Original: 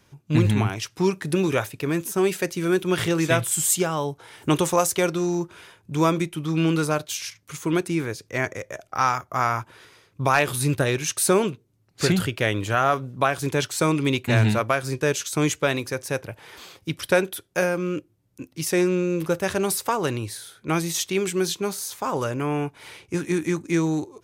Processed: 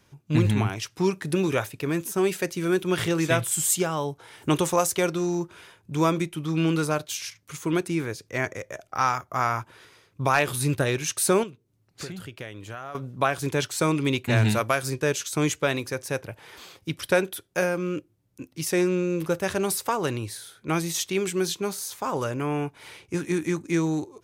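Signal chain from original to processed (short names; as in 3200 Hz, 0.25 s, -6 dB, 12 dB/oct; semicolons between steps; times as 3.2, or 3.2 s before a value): 11.43–12.95 compressor 4:1, threshold -35 dBFS, peak gain reduction 16.5 dB; 14.45–14.9 high shelf 4700 Hz +8.5 dB; gain -2 dB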